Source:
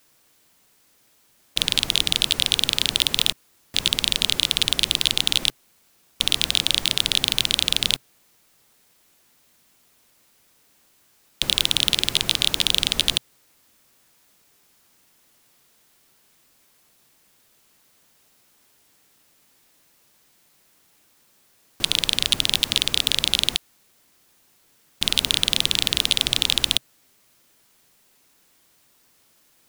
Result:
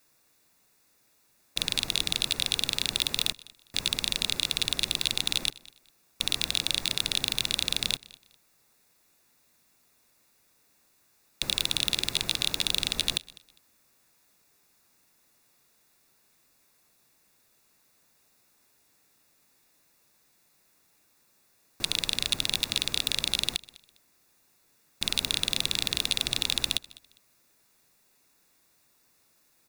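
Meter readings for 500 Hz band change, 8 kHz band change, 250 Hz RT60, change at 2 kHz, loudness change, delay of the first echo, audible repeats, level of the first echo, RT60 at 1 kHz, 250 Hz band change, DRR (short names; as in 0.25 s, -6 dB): -6.0 dB, -6.0 dB, none, -6.0 dB, -7.0 dB, 0.202 s, 2, -22.0 dB, none, -6.0 dB, none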